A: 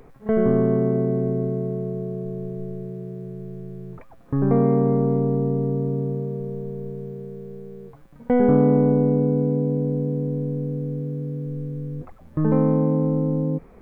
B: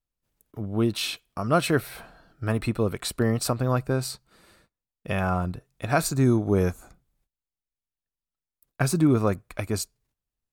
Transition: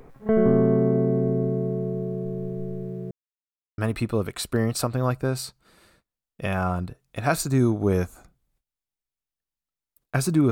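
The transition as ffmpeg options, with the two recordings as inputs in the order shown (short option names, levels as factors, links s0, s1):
-filter_complex "[0:a]apad=whole_dur=10.51,atrim=end=10.51,asplit=2[s0][s1];[s0]atrim=end=3.11,asetpts=PTS-STARTPTS,afade=t=out:st=3.106:d=0.004:c=hsin[s2];[s1]atrim=start=3.11:end=3.78,asetpts=PTS-STARTPTS,volume=0[s3];[1:a]atrim=start=2.44:end=9.17,asetpts=PTS-STARTPTS,afade=t=in:d=0.004:c=hsin[s4];[s2][s3][s4]concat=n=3:v=0:a=1"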